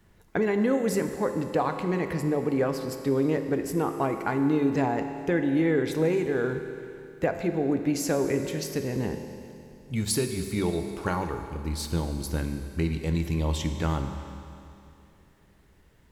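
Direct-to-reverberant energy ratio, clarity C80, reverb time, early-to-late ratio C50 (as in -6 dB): 6.5 dB, 8.5 dB, 2.7 s, 7.5 dB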